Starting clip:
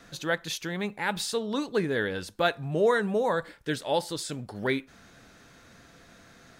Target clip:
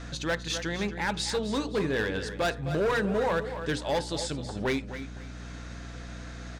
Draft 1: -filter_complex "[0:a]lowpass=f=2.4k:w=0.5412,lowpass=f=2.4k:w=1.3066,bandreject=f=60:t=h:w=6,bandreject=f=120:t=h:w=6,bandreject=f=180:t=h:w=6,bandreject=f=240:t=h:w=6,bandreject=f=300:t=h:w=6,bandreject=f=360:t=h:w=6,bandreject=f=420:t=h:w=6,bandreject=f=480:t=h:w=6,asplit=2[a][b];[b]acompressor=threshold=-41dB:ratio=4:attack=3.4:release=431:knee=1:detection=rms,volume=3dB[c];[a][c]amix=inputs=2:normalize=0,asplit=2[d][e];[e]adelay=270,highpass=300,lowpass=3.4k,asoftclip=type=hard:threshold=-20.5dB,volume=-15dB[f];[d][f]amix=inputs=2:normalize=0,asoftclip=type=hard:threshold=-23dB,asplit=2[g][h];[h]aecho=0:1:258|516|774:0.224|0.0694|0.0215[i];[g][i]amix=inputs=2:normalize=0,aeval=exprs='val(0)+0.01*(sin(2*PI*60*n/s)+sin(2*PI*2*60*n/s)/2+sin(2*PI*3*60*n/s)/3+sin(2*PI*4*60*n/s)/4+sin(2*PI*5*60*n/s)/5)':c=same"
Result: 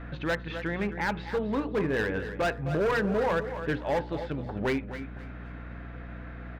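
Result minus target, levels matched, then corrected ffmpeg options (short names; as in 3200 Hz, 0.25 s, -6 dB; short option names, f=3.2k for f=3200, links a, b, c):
8000 Hz band -14.5 dB; compressor: peak gain reduction -4.5 dB
-filter_complex "[0:a]lowpass=f=8.3k:w=0.5412,lowpass=f=8.3k:w=1.3066,bandreject=f=60:t=h:w=6,bandreject=f=120:t=h:w=6,bandreject=f=180:t=h:w=6,bandreject=f=240:t=h:w=6,bandreject=f=300:t=h:w=6,bandreject=f=360:t=h:w=6,bandreject=f=420:t=h:w=6,bandreject=f=480:t=h:w=6,asplit=2[a][b];[b]acompressor=threshold=-47dB:ratio=4:attack=3.4:release=431:knee=1:detection=rms,volume=3dB[c];[a][c]amix=inputs=2:normalize=0,asplit=2[d][e];[e]adelay=270,highpass=300,lowpass=3.4k,asoftclip=type=hard:threshold=-20.5dB,volume=-15dB[f];[d][f]amix=inputs=2:normalize=0,asoftclip=type=hard:threshold=-23dB,asplit=2[g][h];[h]aecho=0:1:258|516|774:0.224|0.0694|0.0215[i];[g][i]amix=inputs=2:normalize=0,aeval=exprs='val(0)+0.01*(sin(2*PI*60*n/s)+sin(2*PI*2*60*n/s)/2+sin(2*PI*3*60*n/s)/3+sin(2*PI*4*60*n/s)/4+sin(2*PI*5*60*n/s)/5)':c=same"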